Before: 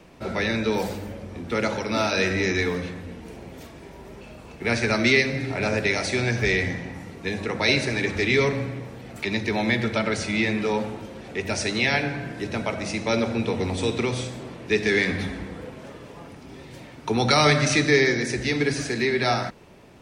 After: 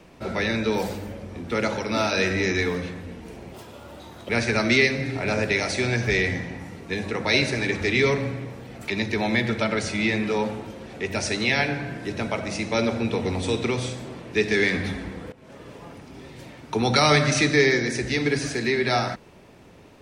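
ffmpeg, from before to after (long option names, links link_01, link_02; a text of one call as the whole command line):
ffmpeg -i in.wav -filter_complex "[0:a]asplit=4[link_01][link_02][link_03][link_04];[link_01]atrim=end=3.544[link_05];[link_02]atrim=start=3.54:end=4.64,asetpts=PTS-STARTPTS,asetrate=64386,aresample=44100,atrim=end_sample=33226,asetpts=PTS-STARTPTS[link_06];[link_03]atrim=start=4.636:end=15.67,asetpts=PTS-STARTPTS,afade=type=out:start_time=11.03:duration=0.004:curve=hsin:silence=0.125893[link_07];[link_04]atrim=start=15.67,asetpts=PTS-STARTPTS,afade=type=in:duration=0.36:silence=0.125893[link_08];[link_05][link_06]acrossfade=duration=0.004:curve1=hsin:curve2=hsin[link_09];[link_07][link_08]concat=n=2:v=0:a=1[link_10];[link_09][link_10]acrossfade=duration=0.004:curve1=hsin:curve2=hsin" out.wav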